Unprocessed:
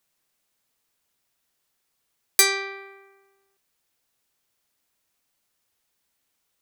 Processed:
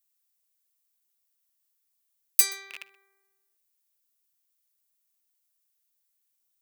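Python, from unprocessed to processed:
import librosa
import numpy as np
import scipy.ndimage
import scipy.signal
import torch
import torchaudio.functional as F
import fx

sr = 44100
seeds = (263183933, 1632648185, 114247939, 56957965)

p1 = fx.rattle_buzz(x, sr, strikes_db=-56.0, level_db=-12.0)
p2 = fx.riaa(p1, sr, side='recording')
p3 = fx.hum_notches(p2, sr, base_hz=60, count=3)
p4 = p3 + fx.echo_single(p3, sr, ms=127, db=-23.5, dry=0)
y = p4 * librosa.db_to_amplitude(-16.5)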